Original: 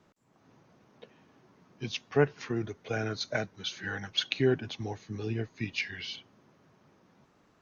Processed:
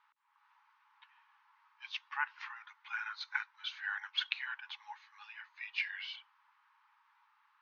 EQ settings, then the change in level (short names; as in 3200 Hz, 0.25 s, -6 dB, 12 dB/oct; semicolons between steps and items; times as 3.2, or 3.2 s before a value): brick-wall FIR high-pass 820 Hz; air absorption 320 m; +2.0 dB